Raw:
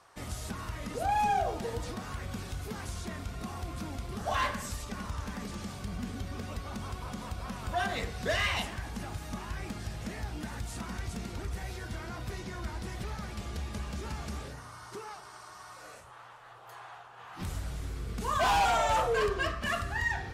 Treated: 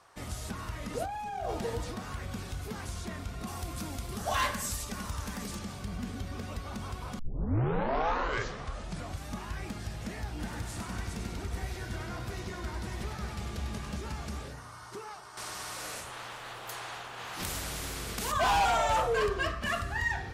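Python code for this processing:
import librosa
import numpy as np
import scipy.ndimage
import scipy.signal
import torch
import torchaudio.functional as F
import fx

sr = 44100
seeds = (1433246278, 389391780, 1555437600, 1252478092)

y = fx.over_compress(x, sr, threshold_db=-33.0, ratio=-1.0, at=(0.92, 1.82), fade=0.02)
y = fx.high_shelf(y, sr, hz=5700.0, db=11.0, at=(3.47, 5.59))
y = fx.echo_split(y, sr, split_hz=840.0, low_ms=181, high_ms=99, feedback_pct=52, wet_db=-6, at=(10.38, 13.97), fade=0.02)
y = fx.spectral_comp(y, sr, ratio=2.0, at=(15.37, 18.32))
y = fx.edit(y, sr, fx.tape_start(start_s=7.19, length_s=2.15), tone=tone)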